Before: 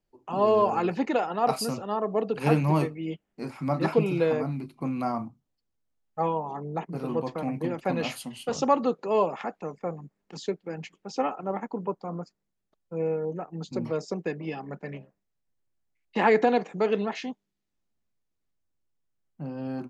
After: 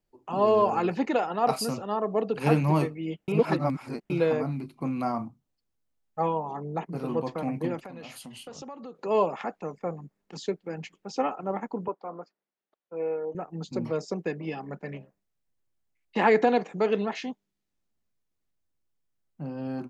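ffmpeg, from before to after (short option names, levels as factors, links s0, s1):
-filter_complex "[0:a]asplit=3[s0][s1][s2];[s0]afade=t=out:st=7.82:d=0.02[s3];[s1]acompressor=threshold=0.01:ratio=5:attack=3.2:release=140:knee=1:detection=peak,afade=t=in:st=7.82:d=0.02,afade=t=out:st=8.94:d=0.02[s4];[s2]afade=t=in:st=8.94:d=0.02[s5];[s3][s4][s5]amix=inputs=3:normalize=0,asettb=1/sr,asplit=3[s6][s7][s8];[s6]atrim=end=11.884[s9];[s7]atrim=start=11.88:end=13.35,asetpts=PTS-STARTPTS,afade=t=in:d=0.004:c=qsin,afade=t=out:st=1.466:d=0.004:c=qsin,highpass=390,lowpass=3000[s10];[s8]atrim=start=13.346[s11];[s9][s10]acrossfade=d=0.004:c1=hsin:c2=qsin[s12];[s12][s11]acrossfade=d=0.004:c1=qsin:c2=hsin,asplit=3[s13][s14][s15];[s13]atrim=end=3.282[s16];[s14]atrim=start=3.278:end=4.102,asetpts=PTS-STARTPTS,areverse[s17];[s15]atrim=start=4.098[s18];[s16][s17]acrossfade=d=0.004:c1=hsin:c2=hsin[s19];[s19][s18]acrossfade=d=0.004:c1=hsin:c2=hsin"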